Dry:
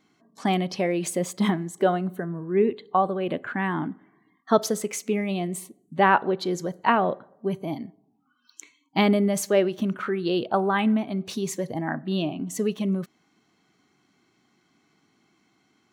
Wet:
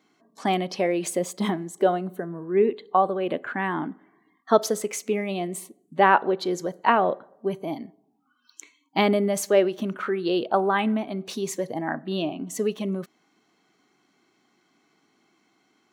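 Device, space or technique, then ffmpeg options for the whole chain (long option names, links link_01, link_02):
filter by subtraction: -filter_complex "[0:a]asplit=2[link_01][link_02];[link_02]lowpass=440,volume=-1[link_03];[link_01][link_03]amix=inputs=2:normalize=0,asettb=1/sr,asplit=3[link_04][link_05][link_06];[link_04]atrim=end=1.194[link_07];[link_05]atrim=start=1.19:end=2.33,asetpts=PTS-STARTPTS,afade=type=in:duration=0.004:curve=qsin,afade=type=out:start_time=1.136:duration=0.004:curve=qsin,equalizer=frequency=1600:width_type=o:width=1.8:gain=-3.5[link_08];[link_06]atrim=start=2.326[link_09];[link_07][link_08]acrossfade=duration=0.004:curve1=hsin:curve2=qsin[link_10];[link_10][link_09]acrossfade=duration=0.004:curve1=qsin:curve2=hsin"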